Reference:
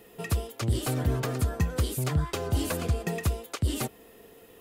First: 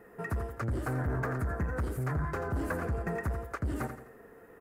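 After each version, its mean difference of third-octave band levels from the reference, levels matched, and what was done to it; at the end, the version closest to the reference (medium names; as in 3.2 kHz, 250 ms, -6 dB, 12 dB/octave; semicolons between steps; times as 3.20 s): 7.5 dB: feedback delay 85 ms, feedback 39%, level -11 dB; saturation -25.5 dBFS, distortion -11 dB; resonant high shelf 2.3 kHz -12 dB, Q 3; trim -1.5 dB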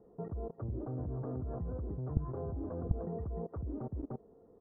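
15.0 dB: delay 300 ms -11.5 dB; level held to a coarse grid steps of 21 dB; Bessel low-pass 660 Hz, order 8; trim +5 dB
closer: first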